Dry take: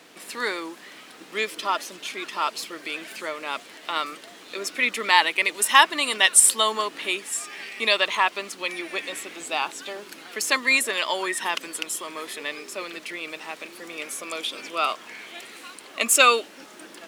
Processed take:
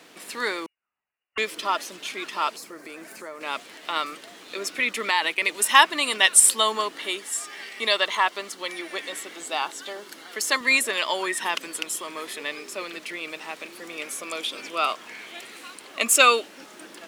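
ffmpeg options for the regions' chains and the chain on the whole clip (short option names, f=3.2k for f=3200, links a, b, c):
-filter_complex "[0:a]asettb=1/sr,asplit=3[a][b][c];[a]atrim=end=0.664[d];[b]atrim=start=0.66:end=1.38,asetpts=PTS-STARTPTS,afade=t=in:d=0.004:c=qsin,afade=t=out:st=0.716:d=0.004:c=qsin,highpass=330,agate=range=-42dB:threshold=-33dB:ratio=16:release=100:detection=peak,lowpass=f=2.7k:t=q:w=0.5098,lowpass=f=2.7k:t=q:w=0.6013,lowpass=f=2.7k:t=q:w=0.9,lowpass=f=2.7k:t=q:w=2.563,afreqshift=-3200[e];[c]atrim=start=1.376[f];[d][e]acrossfade=d=0.004:c1=hsin:c2=qsin[g];[g][f]acrossfade=d=0.004:c1=qsin:c2=hsin,asettb=1/sr,asplit=3[h][i][j];[h]atrim=end=2.564[k];[i]atrim=start=2.56:end=3.41,asetpts=PTS-STARTPTS,afade=t=in:d=0.004:c=qsin,afade=t=out:st=0.846:d=0.004:c=qsin,equalizer=f=3.2k:t=o:w=1:g=-14.5,acompressor=threshold=-37dB:ratio=2:attack=3.2:release=140:knee=1:detection=peak[l];[j]atrim=start=3.406[m];[k][l]acrossfade=d=0.004:c1=hsin:c2=qsin[n];[n][m]acrossfade=d=0.004:c1=qsin:c2=hsin,asettb=1/sr,asplit=3[o][p][q];[o]atrim=end=4.794[r];[p]atrim=start=4.79:end=5.42,asetpts=PTS-STARTPTS,afade=t=in:d=0.004:c=qsin,afade=t=out:st=0.626:d=0.004:c=qsin,agate=range=-33dB:threshold=-33dB:ratio=3:release=100:detection=peak,acompressor=threshold=-18dB:ratio=2.5:attack=3.2:release=140:knee=1:detection=peak[s];[q]atrim=start=5.416[t];[r][s]acrossfade=d=0.004:c1=hsin:c2=qsin[u];[u][t]acrossfade=d=0.004:c1=qsin:c2=hsin,asettb=1/sr,asplit=3[v][w][x];[v]atrim=end=6.924[y];[w]atrim=start=6.92:end=10.61,asetpts=PTS-STARTPTS,afade=t=in:d=0.004:c=qsin,afade=t=out:st=3.686:d=0.004:c=qsin,highpass=f=240:p=1,bandreject=f=2.5k:w=7.1[z];[x]atrim=start=10.606[aa];[y][z]acrossfade=d=0.004:c1=hsin:c2=qsin[ab];[ab][aa]acrossfade=d=0.004:c1=qsin:c2=hsin"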